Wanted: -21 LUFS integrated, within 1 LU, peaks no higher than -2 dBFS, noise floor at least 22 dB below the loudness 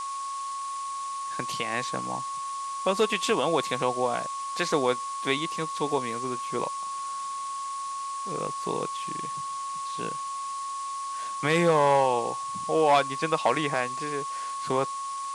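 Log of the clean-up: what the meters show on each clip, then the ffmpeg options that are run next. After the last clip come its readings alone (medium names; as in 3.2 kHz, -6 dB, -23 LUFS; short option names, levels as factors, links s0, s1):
steady tone 1.1 kHz; tone level -31 dBFS; noise floor -34 dBFS; noise floor target -51 dBFS; loudness -28.5 LUFS; peak level -10.0 dBFS; loudness target -21.0 LUFS
-> -af "bandreject=f=1100:w=30"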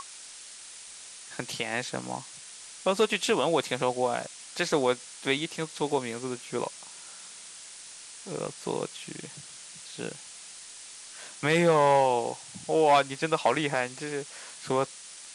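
steady tone not found; noise floor -46 dBFS; noise floor target -50 dBFS
-> -af "afftdn=nr=6:nf=-46"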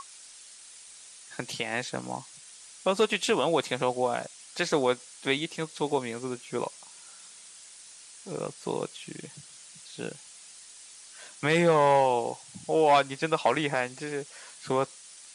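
noise floor -50 dBFS; loudness -28.0 LUFS; peak level -10.5 dBFS; loudness target -21.0 LUFS
-> -af "volume=2.24"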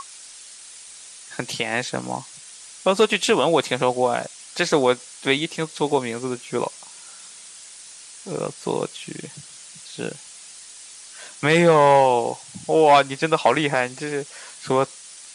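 loudness -21.0 LUFS; peak level -3.5 dBFS; noise floor -43 dBFS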